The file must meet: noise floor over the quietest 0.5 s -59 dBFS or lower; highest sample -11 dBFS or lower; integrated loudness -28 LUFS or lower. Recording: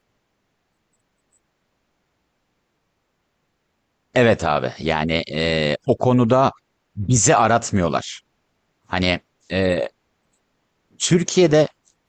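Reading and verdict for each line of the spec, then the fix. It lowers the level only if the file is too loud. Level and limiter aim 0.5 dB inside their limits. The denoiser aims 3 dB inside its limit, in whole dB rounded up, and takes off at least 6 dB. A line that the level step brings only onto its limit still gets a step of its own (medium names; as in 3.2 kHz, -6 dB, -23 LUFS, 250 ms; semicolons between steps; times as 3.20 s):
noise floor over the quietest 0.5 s -71 dBFS: pass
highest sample -5.5 dBFS: fail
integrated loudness -19.0 LUFS: fail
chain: trim -9.5 dB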